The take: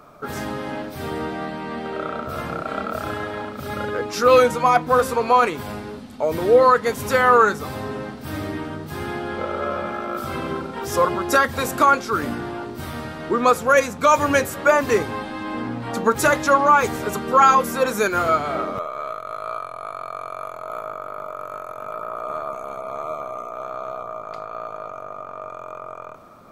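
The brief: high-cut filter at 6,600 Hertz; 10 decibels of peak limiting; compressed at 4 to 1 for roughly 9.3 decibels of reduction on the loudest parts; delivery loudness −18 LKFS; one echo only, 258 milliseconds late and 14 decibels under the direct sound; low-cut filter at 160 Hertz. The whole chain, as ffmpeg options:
ffmpeg -i in.wav -af "highpass=160,lowpass=6600,acompressor=threshold=-21dB:ratio=4,alimiter=limit=-19dB:level=0:latency=1,aecho=1:1:258:0.2,volume=11.5dB" out.wav

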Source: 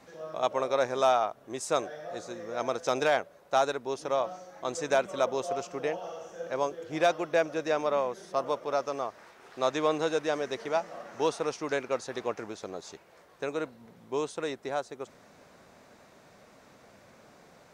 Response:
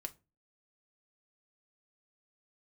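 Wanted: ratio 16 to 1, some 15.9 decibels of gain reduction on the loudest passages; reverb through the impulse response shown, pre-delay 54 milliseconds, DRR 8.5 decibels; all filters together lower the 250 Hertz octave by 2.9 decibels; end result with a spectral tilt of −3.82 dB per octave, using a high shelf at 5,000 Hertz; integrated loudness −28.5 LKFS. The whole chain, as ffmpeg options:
-filter_complex "[0:a]equalizer=frequency=250:width_type=o:gain=-4,highshelf=frequency=5000:gain=-3.5,acompressor=threshold=-36dB:ratio=16,asplit=2[link_01][link_02];[1:a]atrim=start_sample=2205,adelay=54[link_03];[link_02][link_03]afir=irnorm=-1:irlink=0,volume=-5.5dB[link_04];[link_01][link_04]amix=inputs=2:normalize=0,volume=13dB"

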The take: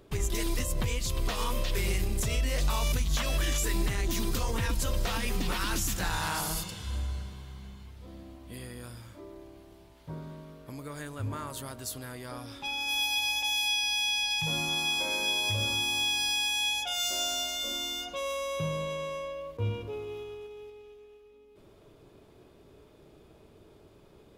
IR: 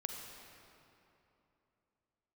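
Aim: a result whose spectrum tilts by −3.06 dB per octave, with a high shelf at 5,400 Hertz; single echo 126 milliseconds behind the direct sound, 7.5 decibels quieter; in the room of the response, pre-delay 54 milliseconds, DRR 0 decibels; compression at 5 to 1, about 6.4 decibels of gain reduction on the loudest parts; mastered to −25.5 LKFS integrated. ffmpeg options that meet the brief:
-filter_complex "[0:a]highshelf=frequency=5400:gain=4,acompressor=threshold=-31dB:ratio=5,aecho=1:1:126:0.422,asplit=2[link_01][link_02];[1:a]atrim=start_sample=2205,adelay=54[link_03];[link_02][link_03]afir=irnorm=-1:irlink=0,volume=0dB[link_04];[link_01][link_04]amix=inputs=2:normalize=0,volume=5dB"

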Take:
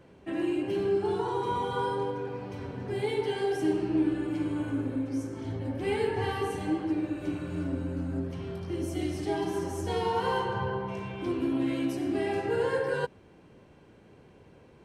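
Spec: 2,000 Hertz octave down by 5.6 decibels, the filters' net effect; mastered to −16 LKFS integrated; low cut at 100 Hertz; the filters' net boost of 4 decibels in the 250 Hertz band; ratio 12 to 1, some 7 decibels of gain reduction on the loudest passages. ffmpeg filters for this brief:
ffmpeg -i in.wav -af "highpass=100,equalizer=frequency=250:width_type=o:gain=5.5,equalizer=frequency=2000:width_type=o:gain=-8,acompressor=threshold=-26dB:ratio=12,volume=16dB" out.wav

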